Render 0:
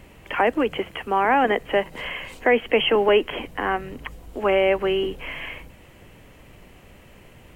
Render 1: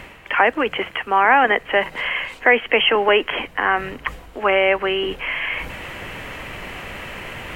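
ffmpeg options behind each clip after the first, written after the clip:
-af "equalizer=f=1700:w=0.44:g=12.5,areverse,acompressor=mode=upward:threshold=0.178:ratio=2.5,areverse,volume=0.631"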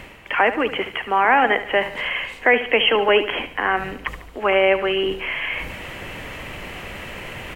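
-af "equalizer=f=1300:t=o:w=1.5:g=-3,aecho=1:1:73|146|219|292:0.237|0.102|0.0438|0.0189"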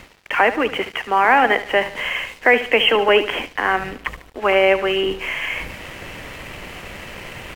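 -af "aeval=exprs='sgn(val(0))*max(abs(val(0))-0.00794,0)':c=same,volume=1.26"

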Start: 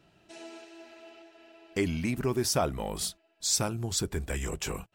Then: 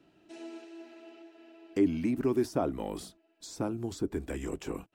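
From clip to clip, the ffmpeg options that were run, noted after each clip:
-filter_complex "[0:a]bass=f=250:g=-4,treble=f=4000:g=-3,acrossover=split=370|1300[s0][s1][s2];[s2]acompressor=threshold=0.00794:ratio=6[s3];[s0][s1][s3]amix=inputs=3:normalize=0,equalizer=f=290:t=o:w=0.76:g=12.5,volume=0.631"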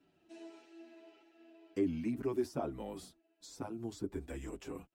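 -filter_complex "[0:a]asplit=2[s0][s1];[s1]adelay=7.7,afreqshift=-1.7[s2];[s0][s2]amix=inputs=2:normalize=1,volume=0.596"

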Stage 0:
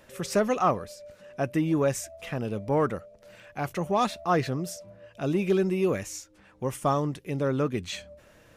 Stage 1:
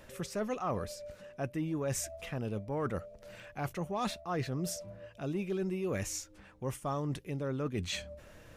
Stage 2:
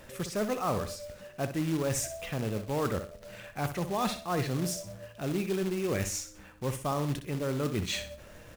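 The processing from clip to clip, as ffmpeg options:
-af "lowshelf=f=79:g=9.5,areverse,acompressor=threshold=0.0251:ratio=6,areverse"
-af "aecho=1:1:62|124|186|248:0.316|0.104|0.0344|0.0114,acrusher=bits=3:mode=log:mix=0:aa=0.000001,volume=1.5"

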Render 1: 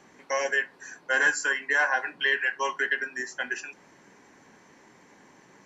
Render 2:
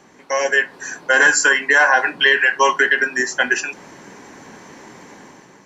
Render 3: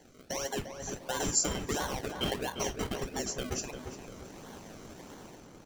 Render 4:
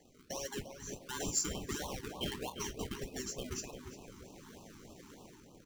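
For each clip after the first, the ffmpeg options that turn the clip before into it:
-af "equalizer=f=2000:w=1.5:g=-2.5,dynaudnorm=f=170:g=7:m=2.82,alimiter=limit=0.299:level=0:latency=1:release=44,volume=2.11"
-filter_complex "[0:a]acrossover=split=330|3000[s0][s1][s2];[s1]acompressor=threshold=0.0251:ratio=4[s3];[s0][s3][s2]amix=inputs=3:normalize=0,acrossover=split=3000[s4][s5];[s4]acrusher=samples=34:mix=1:aa=0.000001:lfo=1:lforange=34:lforate=1.5[s6];[s6][s5]amix=inputs=2:normalize=0,asplit=2[s7][s8];[s8]adelay=349,lowpass=f=2000:p=1,volume=0.473,asplit=2[s9][s10];[s10]adelay=349,lowpass=f=2000:p=1,volume=0.46,asplit=2[s11][s12];[s12]adelay=349,lowpass=f=2000:p=1,volume=0.46,asplit=2[s13][s14];[s14]adelay=349,lowpass=f=2000:p=1,volume=0.46,asplit=2[s15][s16];[s16]adelay=349,lowpass=f=2000:p=1,volume=0.46[s17];[s7][s9][s11][s13][s15][s17]amix=inputs=6:normalize=0,volume=0.398"
-af "acrusher=bits=4:mode=log:mix=0:aa=0.000001,afftfilt=real='re*(1-between(b*sr/1024,560*pow(1800/560,0.5+0.5*sin(2*PI*3.3*pts/sr))/1.41,560*pow(1800/560,0.5+0.5*sin(2*PI*3.3*pts/sr))*1.41))':imag='im*(1-between(b*sr/1024,560*pow(1800/560,0.5+0.5*sin(2*PI*3.3*pts/sr))/1.41,560*pow(1800/560,0.5+0.5*sin(2*PI*3.3*pts/sr))*1.41))':win_size=1024:overlap=0.75,volume=0.531"

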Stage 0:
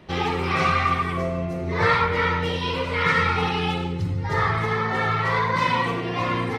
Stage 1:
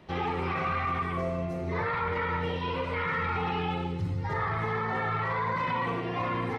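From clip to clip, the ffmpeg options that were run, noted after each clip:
-filter_complex "[0:a]acrossover=split=2900[s0][s1];[s1]acompressor=threshold=0.00355:ratio=4:attack=1:release=60[s2];[s0][s2]amix=inputs=2:normalize=0,equalizer=f=840:w=1.5:g=2.5,alimiter=limit=0.15:level=0:latency=1:release=10,volume=0.531"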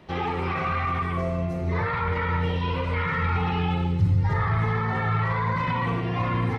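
-af "asubboost=boost=3:cutoff=200,volume=1.41"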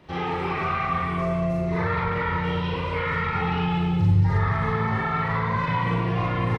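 -af "aecho=1:1:40.82|230.3:1|0.631,volume=0.75"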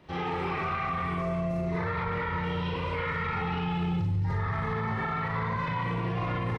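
-af "alimiter=limit=0.112:level=0:latency=1:release=17,volume=0.668"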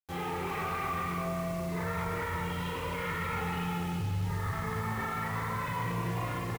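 -filter_complex "[0:a]asplit=2[s0][s1];[s1]asoftclip=type=tanh:threshold=0.0282,volume=0.631[s2];[s0][s2]amix=inputs=2:normalize=0,acrusher=bits=6:mix=0:aa=0.000001,aecho=1:1:386:0.447,volume=0.473"

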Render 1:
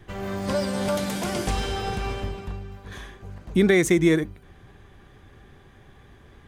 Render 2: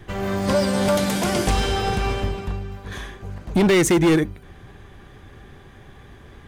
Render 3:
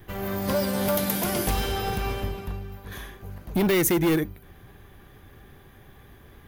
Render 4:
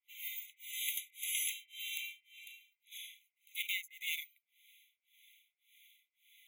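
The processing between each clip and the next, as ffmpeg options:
-af "volume=8.91,asoftclip=hard,volume=0.112,volume=2"
-af "aexciter=amount=7.2:drive=6.3:freq=11000,volume=0.531"
-filter_complex "[0:a]acrossover=split=990[s0][s1];[s0]aeval=exprs='val(0)*(1-1/2+1/2*cos(2*PI*1.8*n/s))':c=same[s2];[s1]aeval=exprs='val(0)*(1-1/2-1/2*cos(2*PI*1.8*n/s))':c=same[s3];[s2][s3]amix=inputs=2:normalize=0,afftfilt=real='re*eq(mod(floor(b*sr/1024/2000),2),1)':imag='im*eq(mod(floor(b*sr/1024/2000),2),1)':win_size=1024:overlap=0.75"

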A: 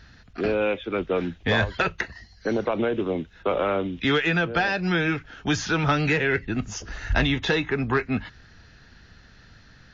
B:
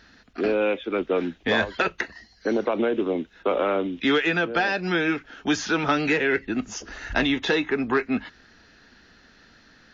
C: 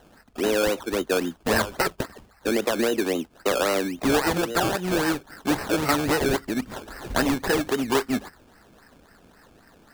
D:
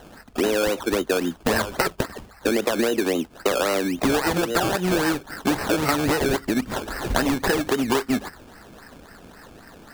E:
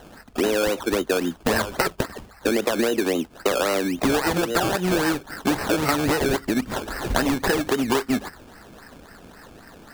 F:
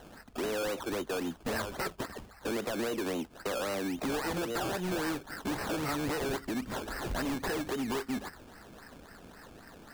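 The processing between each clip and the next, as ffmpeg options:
-af "lowshelf=f=180:t=q:w=1.5:g=-10"
-af "acrusher=samples=18:mix=1:aa=0.000001:lfo=1:lforange=10.8:lforate=3.7"
-af "acompressor=threshold=0.0447:ratio=6,volume=2.66"
-af anull
-af "asoftclip=type=tanh:threshold=0.0668,volume=0.501"

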